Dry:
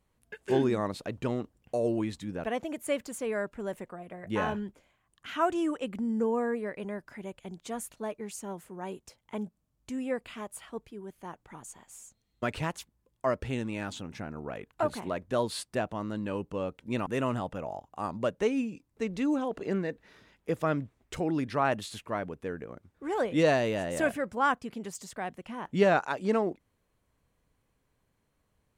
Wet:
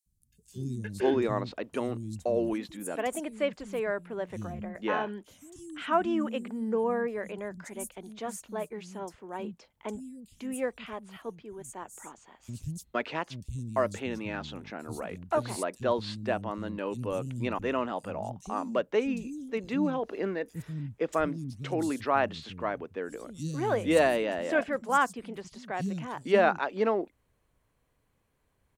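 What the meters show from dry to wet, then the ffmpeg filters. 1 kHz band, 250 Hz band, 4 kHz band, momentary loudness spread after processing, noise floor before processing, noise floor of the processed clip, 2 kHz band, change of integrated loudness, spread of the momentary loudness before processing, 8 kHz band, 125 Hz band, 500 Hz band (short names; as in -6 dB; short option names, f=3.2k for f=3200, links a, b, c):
+1.5 dB, -0.5 dB, 0.0 dB, 15 LU, -76 dBFS, -73 dBFS, +1.5 dB, +0.5 dB, 15 LU, +0.5 dB, 0.0 dB, +1.0 dB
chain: -filter_complex "[0:a]acrossover=split=210|5300[a][b][c];[a]adelay=60[d];[b]adelay=520[e];[d][e][c]amix=inputs=3:normalize=0,volume=1.5dB"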